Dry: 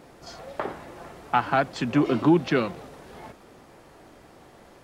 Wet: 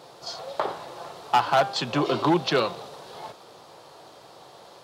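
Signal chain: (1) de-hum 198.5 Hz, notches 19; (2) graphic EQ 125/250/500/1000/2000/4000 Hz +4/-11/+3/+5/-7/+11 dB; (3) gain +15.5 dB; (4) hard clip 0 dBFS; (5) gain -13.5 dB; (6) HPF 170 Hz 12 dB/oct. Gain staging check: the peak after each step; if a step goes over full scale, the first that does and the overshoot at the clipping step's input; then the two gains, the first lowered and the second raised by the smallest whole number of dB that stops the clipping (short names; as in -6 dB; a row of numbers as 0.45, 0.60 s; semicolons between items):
-8.5, -6.0, +9.5, 0.0, -13.5, -10.0 dBFS; step 3, 9.5 dB; step 3 +5.5 dB, step 5 -3.5 dB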